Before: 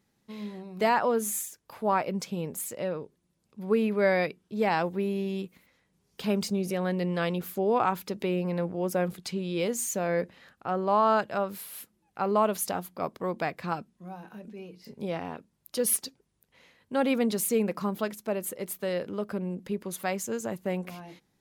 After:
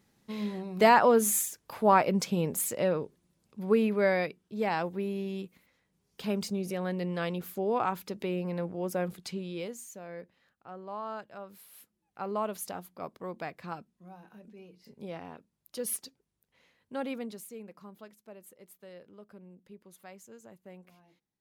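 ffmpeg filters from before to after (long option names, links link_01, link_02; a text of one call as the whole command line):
ffmpeg -i in.wav -af "volume=11.5dB,afade=type=out:start_time=3:duration=1.29:silence=0.398107,afade=type=out:start_time=9.33:duration=0.51:silence=0.266073,afade=type=in:start_time=11.4:duration=0.8:silence=0.421697,afade=type=out:start_time=16.93:duration=0.55:silence=0.281838" out.wav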